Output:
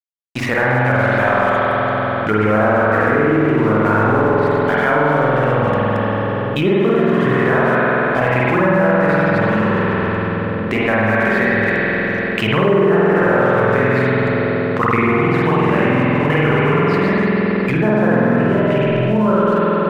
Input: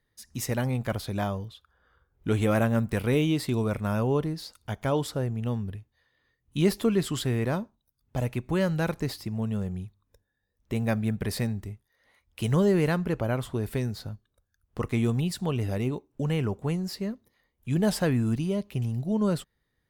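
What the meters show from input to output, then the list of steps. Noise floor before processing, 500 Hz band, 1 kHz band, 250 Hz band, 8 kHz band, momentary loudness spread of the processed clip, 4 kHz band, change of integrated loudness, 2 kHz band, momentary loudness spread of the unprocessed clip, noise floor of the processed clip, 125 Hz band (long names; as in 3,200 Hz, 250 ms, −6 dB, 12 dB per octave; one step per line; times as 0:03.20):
−78 dBFS, +15.5 dB, +20.5 dB, +11.5 dB, can't be measured, 4 LU, +8.5 dB, +13.0 dB, +22.0 dB, 13 LU, −20 dBFS, +9.0 dB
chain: delay that plays each chunk backwards 136 ms, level −5 dB
high-pass filter 210 Hz 6 dB per octave
treble cut that deepens with the level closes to 990 Hz, closed at −23 dBFS
low-pass filter 3,200 Hz 12 dB per octave
parametric band 1,600 Hz +15 dB 1.8 octaves
automatic gain control gain up to 9.5 dB
dead-zone distortion −38 dBFS
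on a send: bucket-brigade delay 528 ms, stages 2,048, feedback 59%, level −15.5 dB
on the sum: spring reverb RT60 2.7 s, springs 47 ms, chirp 65 ms, DRR −8 dB
envelope flattener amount 70%
level −9 dB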